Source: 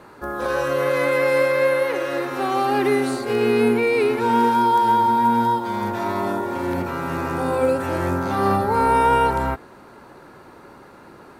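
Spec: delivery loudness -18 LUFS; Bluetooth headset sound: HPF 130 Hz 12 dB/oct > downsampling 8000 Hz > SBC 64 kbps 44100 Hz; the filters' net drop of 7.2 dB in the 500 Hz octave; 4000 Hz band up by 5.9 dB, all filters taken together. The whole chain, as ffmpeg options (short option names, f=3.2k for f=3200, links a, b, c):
-af "highpass=130,equalizer=f=500:t=o:g=-8.5,equalizer=f=4k:t=o:g=7.5,aresample=8000,aresample=44100,volume=4.5dB" -ar 44100 -c:a sbc -b:a 64k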